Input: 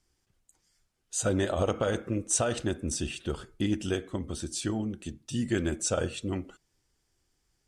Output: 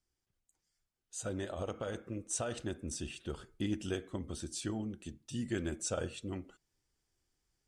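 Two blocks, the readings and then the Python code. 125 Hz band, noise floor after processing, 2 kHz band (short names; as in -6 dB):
-8.5 dB, under -85 dBFS, -8.5 dB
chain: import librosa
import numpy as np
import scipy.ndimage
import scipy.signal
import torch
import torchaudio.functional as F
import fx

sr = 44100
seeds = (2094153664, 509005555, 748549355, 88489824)

y = fx.rider(x, sr, range_db=10, speed_s=2.0)
y = F.gain(torch.from_numpy(y), -9.0).numpy()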